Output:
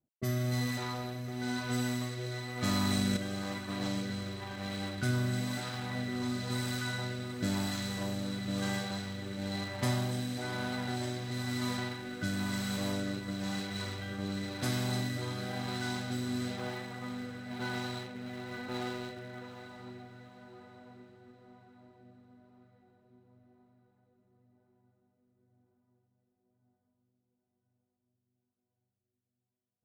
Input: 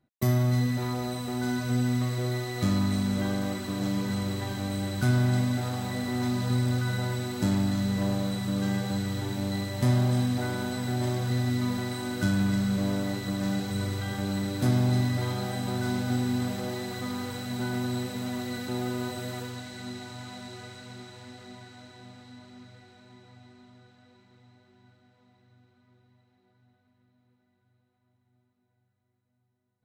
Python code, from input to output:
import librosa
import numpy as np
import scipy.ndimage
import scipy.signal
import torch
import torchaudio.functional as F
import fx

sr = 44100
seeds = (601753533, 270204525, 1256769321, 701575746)

p1 = fx.env_lowpass(x, sr, base_hz=540.0, full_db=-22.5)
p2 = fx.low_shelf(p1, sr, hz=500.0, db=-11.0)
p3 = np.where(np.abs(p2) >= 10.0 ** (-35.0 / 20.0), p2, 0.0)
p4 = p2 + (p3 * librosa.db_to_amplitude(-10.0))
p5 = fx.rotary(p4, sr, hz=1.0)
p6 = p5 + fx.echo_diffused(p5, sr, ms=775, feedback_pct=42, wet_db=-12.5, dry=0)
y = fx.env_flatten(p6, sr, amount_pct=100, at=(2.67, 3.17))